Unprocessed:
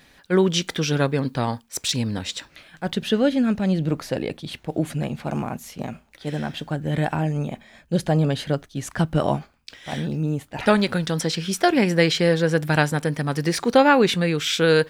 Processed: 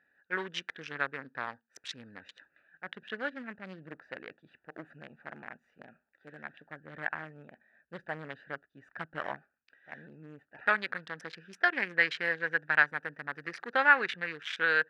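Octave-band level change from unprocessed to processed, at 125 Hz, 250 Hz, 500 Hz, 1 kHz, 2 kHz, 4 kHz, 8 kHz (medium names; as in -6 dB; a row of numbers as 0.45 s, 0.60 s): -28.5 dB, -25.0 dB, -18.5 dB, -9.5 dB, -1.0 dB, -16.0 dB, under -25 dB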